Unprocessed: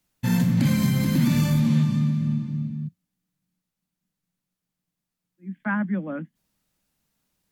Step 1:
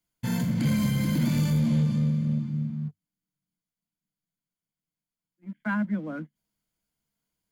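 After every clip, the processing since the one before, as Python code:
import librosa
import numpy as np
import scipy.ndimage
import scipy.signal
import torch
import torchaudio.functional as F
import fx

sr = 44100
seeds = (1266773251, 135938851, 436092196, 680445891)

y = fx.ripple_eq(x, sr, per_octave=1.8, db=7)
y = fx.leveller(y, sr, passes=1)
y = F.gain(torch.from_numpy(y), -7.5).numpy()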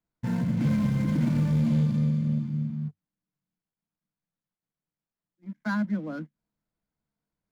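y = scipy.ndimage.median_filter(x, 15, mode='constant')
y = fx.high_shelf(y, sr, hz=11000.0, db=-5.5)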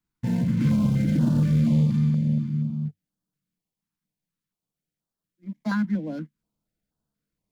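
y = fx.filter_held_notch(x, sr, hz=4.2, low_hz=580.0, high_hz=2200.0)
y = F.gain(torch.from_numpy(y), 3.5).numpy()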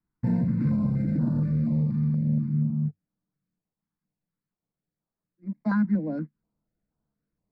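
y = fx.rider(x, sr, range_db=10, speed_s=0.5)
y = scipy.signal.lfilter(np.full(14, 1.0 / 14), 1.0, y)
y = F.gain(torch.from_numpy(y), -2.0).numpy()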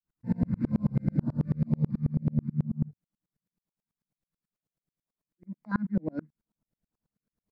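y = fx.tremolo_decay(x, sr, direction='swelling', hz=9.2, depth_db=37)
y = F.gain(torch.from_numpy(y), 5.0).numpy()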